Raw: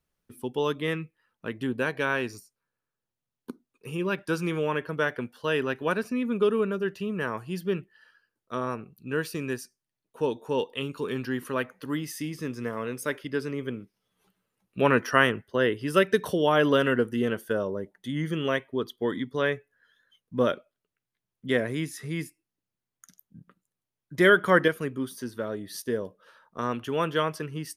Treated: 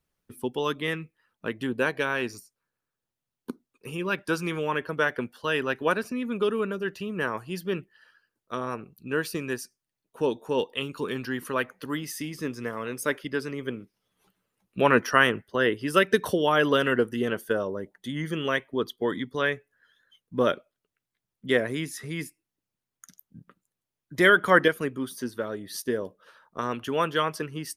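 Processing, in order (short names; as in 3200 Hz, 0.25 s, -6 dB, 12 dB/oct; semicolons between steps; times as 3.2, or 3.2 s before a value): harmonic-percussive split harmonic -6 dB; gain +3.5 dB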